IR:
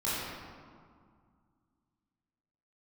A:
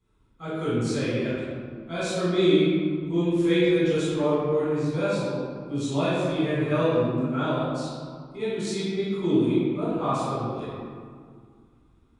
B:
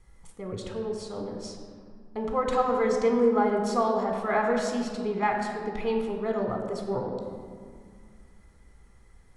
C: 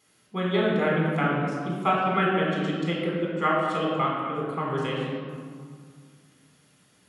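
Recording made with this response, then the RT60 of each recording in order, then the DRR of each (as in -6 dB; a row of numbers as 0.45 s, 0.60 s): A; 2.0 s, 2.1 s, 2.0 s; -11.0 dB, 2.5 dB, -4.0 dB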